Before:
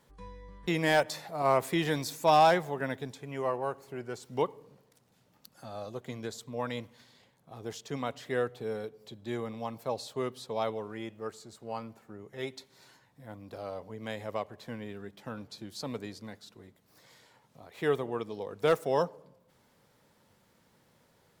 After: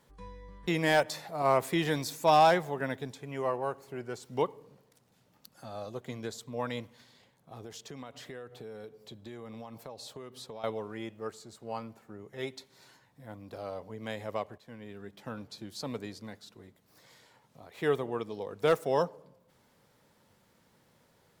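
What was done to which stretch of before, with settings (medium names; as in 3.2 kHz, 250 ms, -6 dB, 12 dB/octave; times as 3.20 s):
7.63–10.64 s: compression 8:1, threshold -40 dBFS
14.58–15.19 s: fade in, from -12.5 dB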